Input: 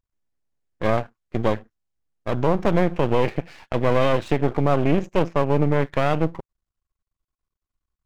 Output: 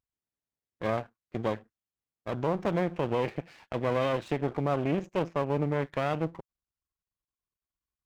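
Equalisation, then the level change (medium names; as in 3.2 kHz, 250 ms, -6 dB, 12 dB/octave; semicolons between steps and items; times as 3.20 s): high-pass 84 Hz 6 dB/octave; -8.0 dB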